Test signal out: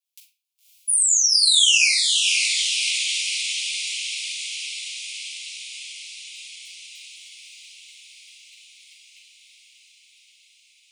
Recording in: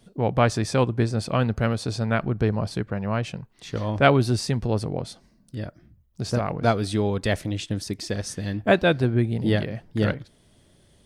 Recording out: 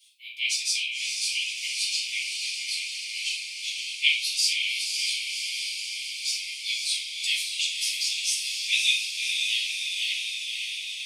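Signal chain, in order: steep high-pass 2.3 kHz 96 dB/octave; on a send: echo that smears into a reverb 561 ms, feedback 73%, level -4 dB; on the sum: simulated room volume 390 m³, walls furnished, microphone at 7.1 m

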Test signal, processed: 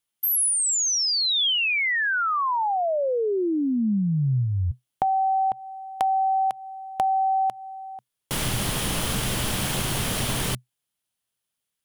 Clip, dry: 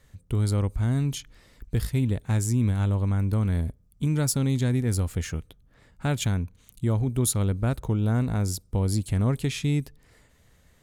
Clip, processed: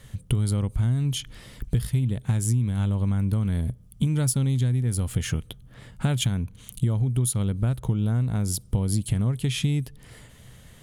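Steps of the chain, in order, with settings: graphic EQ with 31 bands 125 Hz +10 dB, 200 Hz +5 dB, 3.15 kHz +7 dB, 10 kHz +8 dB; compression 10:1, threshold -29 dBFS; trim +8.5 dB

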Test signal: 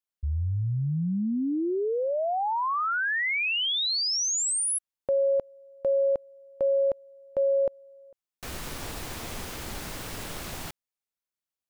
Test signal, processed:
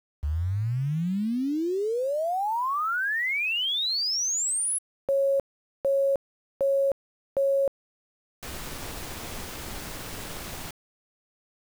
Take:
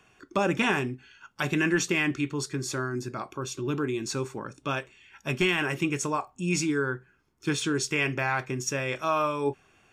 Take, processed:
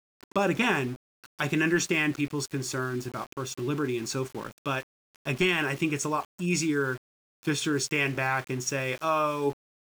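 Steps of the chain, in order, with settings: small samples zeroed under -40.5 dBFS

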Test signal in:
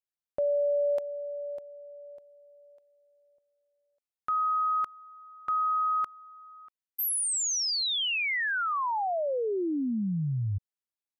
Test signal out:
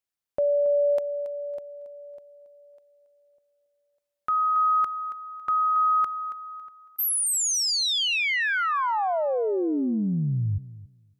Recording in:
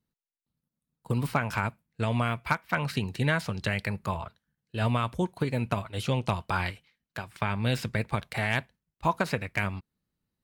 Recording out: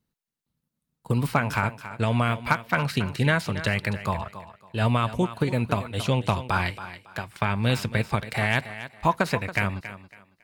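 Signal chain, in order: thinning echo 277 ms, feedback 26%, high-pass 150 Hz, level -12.5 dB; trim +4 dB

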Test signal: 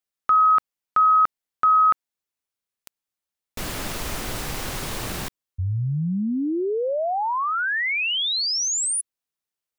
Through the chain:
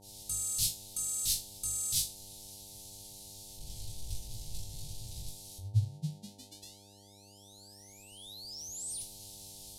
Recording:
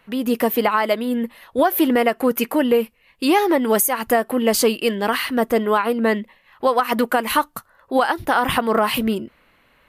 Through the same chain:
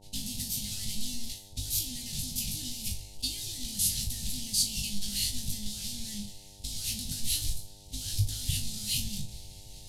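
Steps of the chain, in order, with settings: one-bit delta coder 64 kbps, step -19 dBFS; hum notches 50/100/150/200/250/300/350 Hz; gate -23 dBFS, range -53 dB; bass shelf 250 Hz +10.5 dB; in parallel at +2.5 dB: peak limiter -16.5 dBFS; on the sum: compression, threshold -15 dBFS; Chebyshev band-stop 130–3900 Hz, order 3; on a send: flutter echo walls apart 3.4 m, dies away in 0.26 s; on the sum: mains buzz 100 Hz, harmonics 9, -55 dBFS -3 dB/octave; trim -4.5 dB

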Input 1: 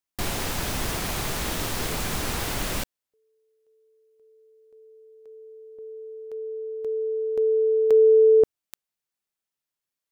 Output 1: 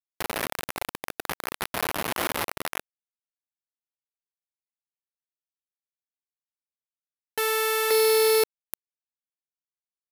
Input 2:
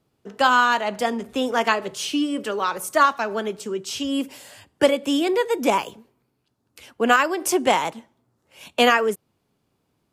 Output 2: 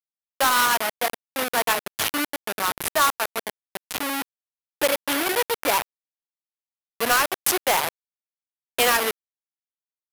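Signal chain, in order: send-on-delta sampling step -18 dBFS; high-pass 1.4 kHz 6 dB/octave; peaking EQ 12 kHz +9.5 dB 0.81 oct; in parallel at -10 dB: sine folder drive 15 dB, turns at -5.5 dBFS; on the sum: trim -2 dB

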